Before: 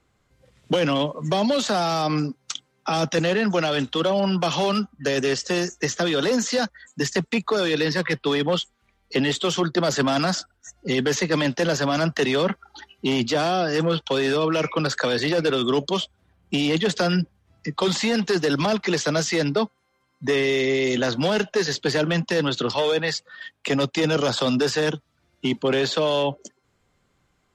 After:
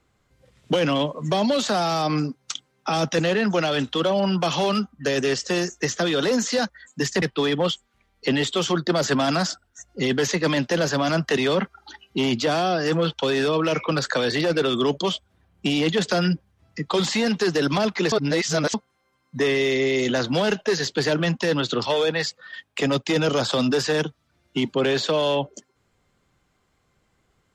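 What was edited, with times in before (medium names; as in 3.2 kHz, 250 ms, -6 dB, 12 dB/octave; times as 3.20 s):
7.22–8.10 s: delete
19.00–19.62 s: reverse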